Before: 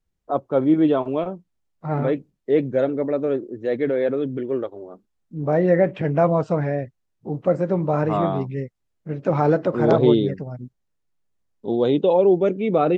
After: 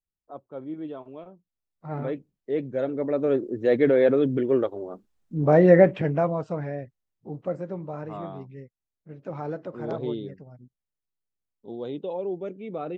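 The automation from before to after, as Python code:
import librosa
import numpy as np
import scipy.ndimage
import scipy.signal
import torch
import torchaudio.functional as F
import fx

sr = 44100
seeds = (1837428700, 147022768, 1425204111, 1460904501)

y = fx.gain(x, sr, db=fx.line((1.3, -18.0), (1.94, -8.5), (2.68, -8.5), (3.53, 2.5), (5.83, 2.5), (6.35, -8.5), (7.33, -8.5), (7.98, -14.5)))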